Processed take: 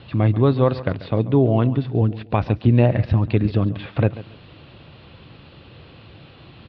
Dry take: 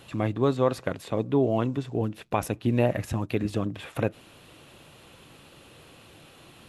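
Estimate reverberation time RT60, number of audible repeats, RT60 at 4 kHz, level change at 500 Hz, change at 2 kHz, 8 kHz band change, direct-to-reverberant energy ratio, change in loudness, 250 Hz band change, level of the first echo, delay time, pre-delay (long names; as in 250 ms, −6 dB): no reverb audible, 2, no reverb audible, +4.5 dB, +3.5 dB, below −25 dB, no reverb audible, +8.0 dB, +7.0 dB, −16.0 dB, 139 ms, no reverb audible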